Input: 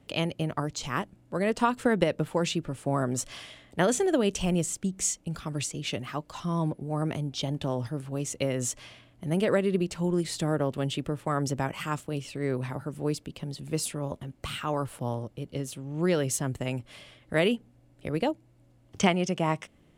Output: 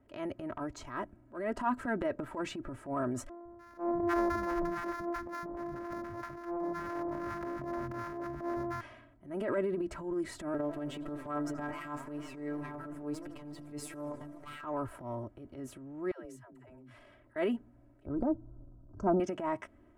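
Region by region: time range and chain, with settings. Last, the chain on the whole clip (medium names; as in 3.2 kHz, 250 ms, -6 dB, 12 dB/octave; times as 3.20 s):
3.29–8.81 s: sorted samples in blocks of 128 samples + treble shelf 5.9 kHz -8 dB + three bands offset in time mids, lows, highs 160/300 ms, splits 210/960 Hz
10.54–14.64 s: companding laws mixed up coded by mu + robot voice 147 Hz + modulated delay 84 ms, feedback 76%, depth 194 cents, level -19 dB
16.11–17.36 s: compression 10:1, threshold -42 dBFS + phase dispersion lows, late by 142 ms, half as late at 380 Hz
18.06–19.20 s: brick-wall FIR band-stop 1.6–4.5 kHz + tilt EQ -3.5 dB/octave
whole clip: resonant high shelf 2.3 kHz -13 dB, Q 1.5; comb 3.1 ms, depth 79%; transient shaper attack -10 dB, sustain +6 dB; trim -8 dB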